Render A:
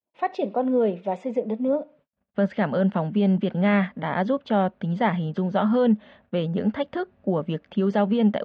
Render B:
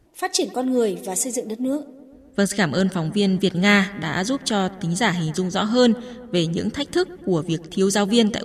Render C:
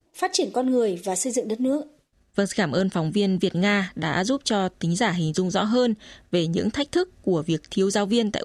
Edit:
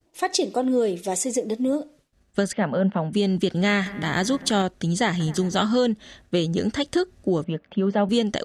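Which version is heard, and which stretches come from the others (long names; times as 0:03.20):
C
0:02.53–0:03.13: punch in from A
0:03.86–0:04.62: punch in from B
0:05.20–0:05.66: punch in from B
0:07.44–0:08.09: punch in from A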